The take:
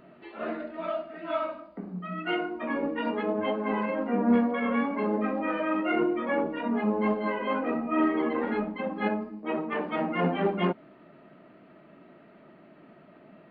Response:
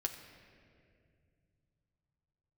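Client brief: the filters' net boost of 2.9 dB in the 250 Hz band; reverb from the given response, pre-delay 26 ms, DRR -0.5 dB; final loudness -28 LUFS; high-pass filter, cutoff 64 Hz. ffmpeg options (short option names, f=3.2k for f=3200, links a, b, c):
-filter_complex "[0:a]highpass=64,equalizer=f=250:t=o:g=3.5,asplit=2[a][b];[1:a]atrim=start_sample=2205,adelay=26[c];[b][c]afir=irnorm=-1:irlink=0,volume=0dB[d];[a][d]amix=inputs=2:normalize=0,volume=-4.5dB"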